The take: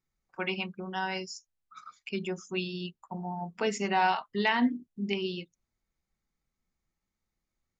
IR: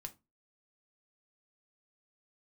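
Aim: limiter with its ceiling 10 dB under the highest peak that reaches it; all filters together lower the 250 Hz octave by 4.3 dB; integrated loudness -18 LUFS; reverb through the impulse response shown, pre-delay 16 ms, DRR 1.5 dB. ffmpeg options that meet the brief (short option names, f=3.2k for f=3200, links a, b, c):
-filter_complex "[0:a]equalizer=f=250:t=o:g=-5.5,alimiter=limit=-23dB:level=0:latency=1,asplit=2[a][b];[1:a]atrim=start_sample=2205,adelay=16[c];[b][c]afir=irnorm=-1:irlink=0,volume=3dB[d];[a][d]amix=inputs=2:normalize=0,volume=15dB"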